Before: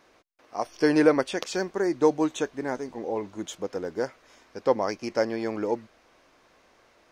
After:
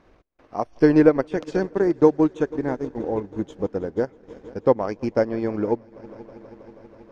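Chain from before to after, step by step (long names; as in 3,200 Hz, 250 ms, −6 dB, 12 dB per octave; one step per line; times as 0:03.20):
RIAA equalisation playback
echo machine with several playback heads 161 ms, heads all three, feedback 74%, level −23.5 dB
transient designer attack +3 dB, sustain −11 dB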